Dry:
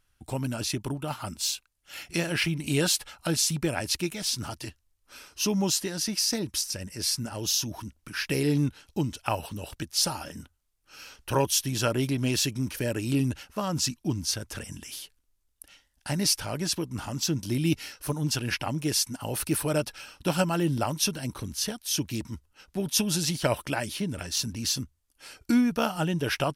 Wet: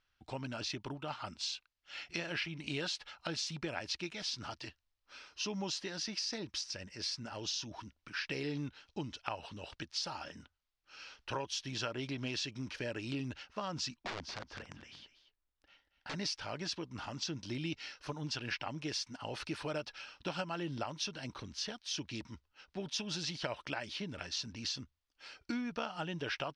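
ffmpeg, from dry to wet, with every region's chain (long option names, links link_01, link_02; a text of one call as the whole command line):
ffmpeg -i in.wav -filter_complex "[0:a]asettb=1/sr,asplit=3[link_01][link_02][link_03];[link_01]atrim=end=13.964[link_04];[link_02]atrim=start=13.96:end=16.14,asetpts=PTS-STARTPTS,afade=type=in:duration=0.004:curve=qsin,afade=type=out:start_time=2.176:duration=0.004:curve=qsin,lowpass=frequency=1700:poles=1,aeval=exprs='(mod(25.1*val(0)+1,2)-1)/25.1':channel_layout=same,aecho=1:1:232:0.224,atrim=end_sample=96138[link_05];[link_03]atrim=start=16.136[link_06];[link_04][link_05]acrossfade=duration=0.004:curve1=hsin:curve2=qsin[link_07];[link_07][link_06]acrossfade=duration=0.004:curve1=qsin:curve2=hsin,lowpass=frequency=5100:width=0.5412,lowpass=frequency=5100:width=1.3066,lowshelf=frequency=420:gain=-10,acompressor=threshold=-31dB:ratio=5,volume=-3.5dB" out.wav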